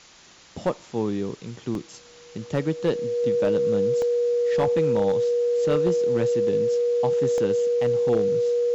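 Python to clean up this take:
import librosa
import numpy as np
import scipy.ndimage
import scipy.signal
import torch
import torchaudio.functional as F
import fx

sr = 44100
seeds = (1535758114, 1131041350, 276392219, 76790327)

y = fx.fix_declip(x, sr, threshold_db=-14.5)
y = fx.notch(y, sr, hz=480.0, q=30.0)
y = fx.fix_interpolate(y, sr, at_s=(1.75, 4.02, 7.38), length_ms=1.3)
y = fx.noise_reduce(y, sr, print_start_s=0.06, print_end_s=0.56, reduce_db=21.0)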